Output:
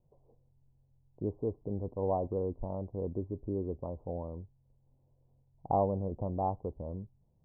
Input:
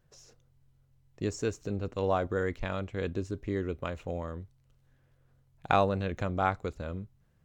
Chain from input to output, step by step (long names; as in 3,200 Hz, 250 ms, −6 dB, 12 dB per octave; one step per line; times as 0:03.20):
Butterworth low-pass 980 Hz 72 dB per octave
level −2.5 dB